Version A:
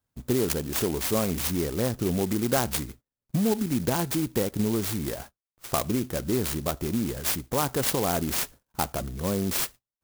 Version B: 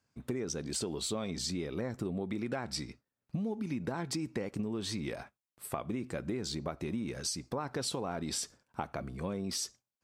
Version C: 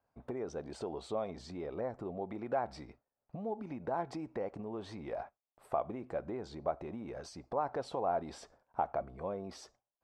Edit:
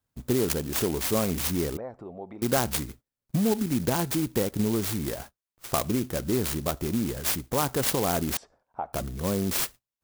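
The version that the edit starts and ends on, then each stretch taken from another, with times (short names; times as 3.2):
A
1.77–2.42 from C
8.37–8.93 from C
not used: B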